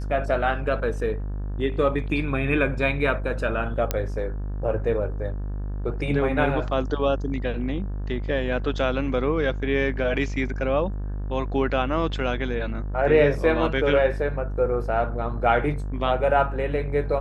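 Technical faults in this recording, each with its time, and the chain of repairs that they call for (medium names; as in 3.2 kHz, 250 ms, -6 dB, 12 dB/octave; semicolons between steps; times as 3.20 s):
buzz 50 Hz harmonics 36 -29 dBFS
3.91 s: pop -8 dBFS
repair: de-click; de-hum 50 Hz, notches 36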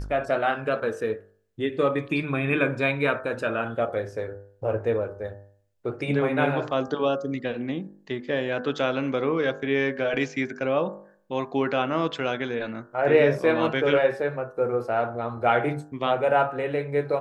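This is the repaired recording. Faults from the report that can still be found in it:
nothing left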